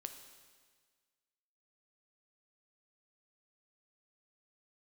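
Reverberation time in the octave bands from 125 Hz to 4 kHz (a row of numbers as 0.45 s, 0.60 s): 1.6 s, 1.6 s, 1.6 s, 1.6 s, 1.6 s, 1.6 s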